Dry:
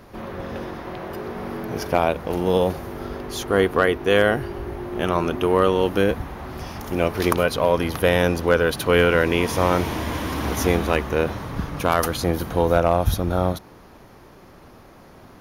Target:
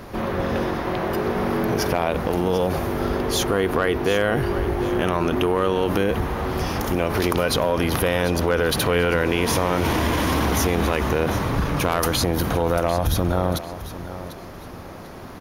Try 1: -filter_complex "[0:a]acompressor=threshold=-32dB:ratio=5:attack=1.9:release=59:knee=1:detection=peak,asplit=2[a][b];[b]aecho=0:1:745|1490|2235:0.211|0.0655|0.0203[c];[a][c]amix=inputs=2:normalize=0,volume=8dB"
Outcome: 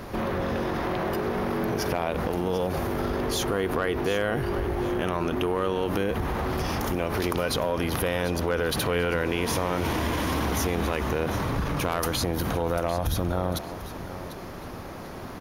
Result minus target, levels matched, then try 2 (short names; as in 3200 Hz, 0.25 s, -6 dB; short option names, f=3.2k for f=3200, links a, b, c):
compressor: peak gain reduction +5.5 dB
-filter_complex "[0:a]acompressor=threshold=-25dB:ratio=5:attack=1.9:release=59:knee=1:detection=peak,asplit=2[a][b];[b]aecho=0:1:745|1490|2235:0.211|0.0655|0.0203[c];[a][c]amix=inputs=2:normalize=0,volume=8dB"